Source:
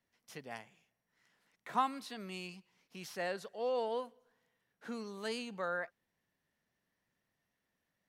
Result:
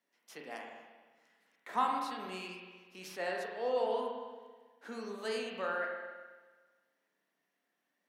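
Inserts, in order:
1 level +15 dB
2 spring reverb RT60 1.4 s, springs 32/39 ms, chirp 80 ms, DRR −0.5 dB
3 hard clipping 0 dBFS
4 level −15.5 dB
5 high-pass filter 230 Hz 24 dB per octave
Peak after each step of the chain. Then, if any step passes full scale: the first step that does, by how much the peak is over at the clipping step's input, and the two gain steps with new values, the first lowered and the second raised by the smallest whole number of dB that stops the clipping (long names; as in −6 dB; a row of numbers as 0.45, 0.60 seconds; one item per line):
−5.5, −3.5, −3.5, −19.0, −18.5 dBFS
no step passes full scale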